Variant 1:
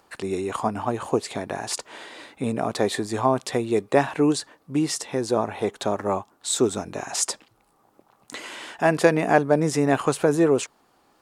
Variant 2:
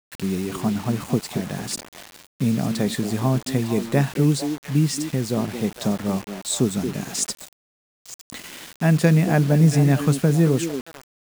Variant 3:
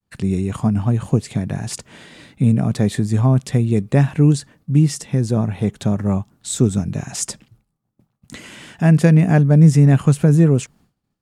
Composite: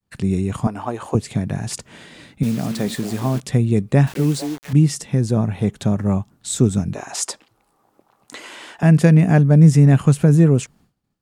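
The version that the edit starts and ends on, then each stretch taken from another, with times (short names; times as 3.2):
3
0.67–1.15 from 1
2.43–3.4 from 2
4.07–4.73 from 2
6.95–8.83 from 1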